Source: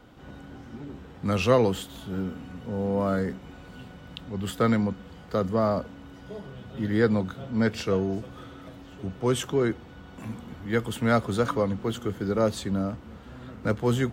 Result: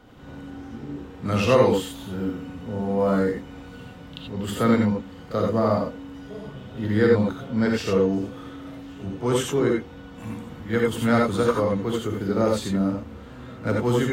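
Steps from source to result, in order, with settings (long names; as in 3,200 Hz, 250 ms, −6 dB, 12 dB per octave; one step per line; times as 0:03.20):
echo ahead of the sound 36 ms −14 dB
reverb whose tail is shaped and stops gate 110 ms rising, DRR −0.5 dB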